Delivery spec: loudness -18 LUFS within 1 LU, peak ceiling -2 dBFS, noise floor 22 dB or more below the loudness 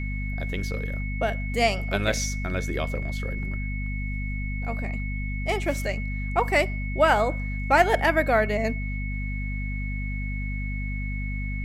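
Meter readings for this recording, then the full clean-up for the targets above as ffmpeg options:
hum 50 Hz; harmonics up to 250 Hz; hum level -27 dBFS; steady tone 2200 Hz; tone level -36 dBFS; loudness -26.5 LUFS; peak -5.5 dBFS; loudness target -18.0 LUFS
-> -af "bandreject=f=50:t=h:w=4,bandreject=f=100:t=h:w=4,bandreject=f=150:t=h:w=4,bandreject=f=200:t=h:w=4,bandreject=f=250:t=h:w=4"
-af "bandreject=f=2.2k:w=30"
-af "volume=8.5dB,alimiter=limit=-2dB:level=0:latency=1"

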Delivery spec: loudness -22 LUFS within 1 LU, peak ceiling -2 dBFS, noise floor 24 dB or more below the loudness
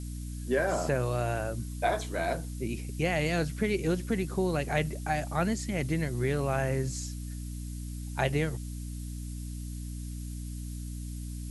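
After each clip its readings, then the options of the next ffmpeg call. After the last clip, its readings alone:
hum 60 Hz; harmonics up to 300 Hz; hum level -35 dBFS; noise floor -38 dBFS; noise floor target -56 dBFS; loudness -32.0 LUFS; peak -13.0 dBFS; loudness target -22.0 LUFS
-> -af "bandreject=f=60:t=h:w=6,bandreject=f=120:t=h:w=6,bandreject=f=180:t=h:w=6,bandreject=f=240:t=h:w=6,bandreject=f=300:t=h:w=6"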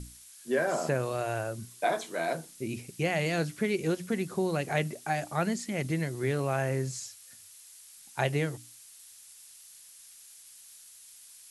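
hum none; noise floor -53 dBFS; noise floor target -56 dBFS
-> -af "afftdn=nr=6:nf=-53"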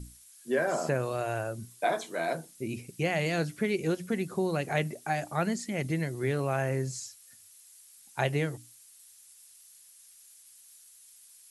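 noise floor -56 dBFS; loudness -31.5 LUFS; peak -13.5 dBFS; loudness target -22.0 LUFS
-> -af "volume=9.5dB"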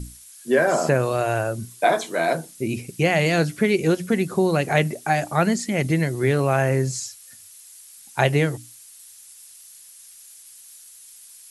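loudness -22.0 LUFS; peak -4.0 dBFS; noise floor -46 dBFS

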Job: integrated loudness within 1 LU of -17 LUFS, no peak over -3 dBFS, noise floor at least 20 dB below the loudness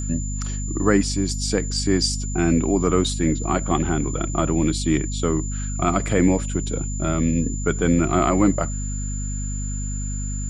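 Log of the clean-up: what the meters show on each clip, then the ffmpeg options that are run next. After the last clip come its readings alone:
hum 50 Hz; harmonics up to 250 Hz; hum level -24 dBFS; steady tone 7100 Hz; tone level -33 dBFS; loudness -22.5 LUFS; peak -4.5 dBFS; loudness target -17.0 LUFS
-> -af "bandreject=f=50:t=h:w=6,bandreject=f=100:t=h:w=6,bandreject=f=150:t=h:w=6,bandreject=f=200:t=h:w=6,bandreject=f=250:t=h:w=6"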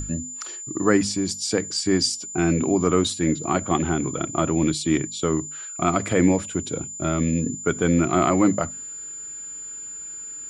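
hum none; steady tone 7100 Hz; tone level -33 dBFS
-> -af "bandreject=f=7.1k:w=30"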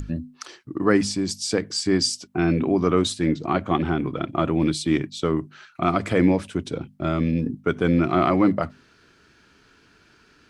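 steady tone none; loudness -23.0 LUFS; peak -6.0 dBFS; loudness target -17.0 LUFS
-> -af "volume=6dB,alimiter=limit=-3dB:level=0:latency=1"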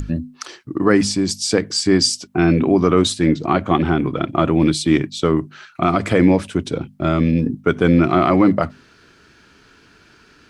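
loudness -17.5 LUFS; peak -3.0 dBFS; noise floor -51 dBFS

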